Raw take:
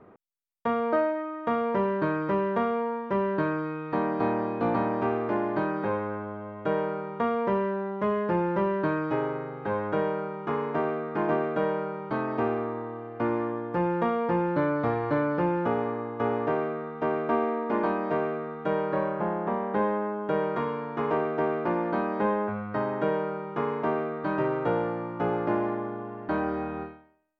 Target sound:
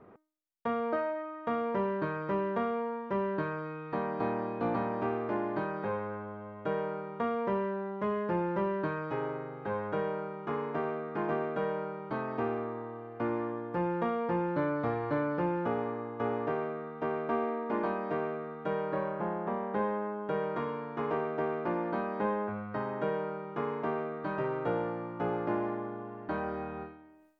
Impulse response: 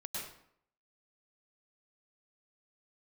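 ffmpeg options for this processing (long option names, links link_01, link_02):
-af "bandreject=frequency=309.7:width_type=h:width=4,bandreject=frequency=619.4:width_type=h:width=4,bandreject=frequency=929.1:width_type=h:width=4,bandreject=frequency=1238.8:width_type=h:width=4,bandreject=frequency=1548.5:width_type=h:width=4,bandreject=frequency=1858.2:width_type=h:width=4,bandreject=frequency=2167.9:width_type=h:width=4,areverse,acompressor=mode=upward:threshold=-45dB:ratio=2.5,areverse,volume=-5dB"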